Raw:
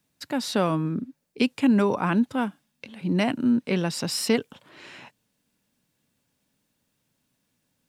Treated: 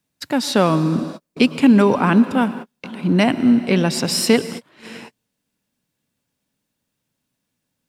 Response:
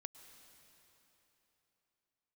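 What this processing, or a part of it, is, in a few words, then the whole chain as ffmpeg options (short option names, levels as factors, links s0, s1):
keyed gated reverb: -filter_complex "[0:a]asplit=3[s0][s1][s2];[1:a]atrim=start_sample=2205[s3];[s1][s3]afir=irnorm=-1:irlink=0[s4];[s2]apad=whole_len=347656[s5];[s4][s5]sidechaingate=range=0.00316:threshold=0.00631:ratio=16:detection=peak,volume=4.22[s6];[s0][s6]amix=inputs=2:normalize=0,volume=0.75"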